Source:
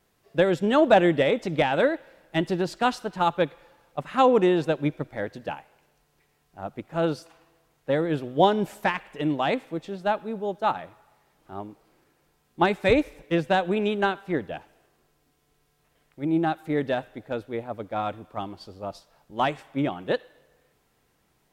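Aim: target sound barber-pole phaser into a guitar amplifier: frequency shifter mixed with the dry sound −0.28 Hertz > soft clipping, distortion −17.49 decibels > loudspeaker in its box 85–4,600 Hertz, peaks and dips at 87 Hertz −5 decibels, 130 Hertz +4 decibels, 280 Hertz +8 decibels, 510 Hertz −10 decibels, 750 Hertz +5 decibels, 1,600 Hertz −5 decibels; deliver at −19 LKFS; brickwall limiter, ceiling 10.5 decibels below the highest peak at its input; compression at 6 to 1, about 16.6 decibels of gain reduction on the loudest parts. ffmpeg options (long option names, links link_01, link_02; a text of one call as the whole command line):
ffmpeg -i in.wav -filter_complex "[0:a]acompressor=threshold=-30dB:ratio=6,alimiter=level_in=4.5dB:limit=-24dB:level=0:latency=1,volume=-4.5dB,asplit=2[link_01][link_02];[link_02]afreqshift=-0.28[link_03];[link_01][link_03]amix=inputs=2:normalize=1,asoftclip=threshold=-34dB,highpass=85,equalizer=frequency=87:width_type=q:width=4:gain=-5,equalizer=frequency=130:width_type=q:width=4:gain=4,equalizer=frequency=280:width_type=q:width=4:gain=8,equalizer=frequency=510:width_type=q:width=4:gain=-10,equalizer=frequency=750:width_type=q:width=4:gain=5,equalizer=frequency=1600:width_type=q:width=4:gain=-5,lowpass=frequency=4600:width=0.5412,lowpass=frequency=4600:width=1.3066,volume=24dB" out.wav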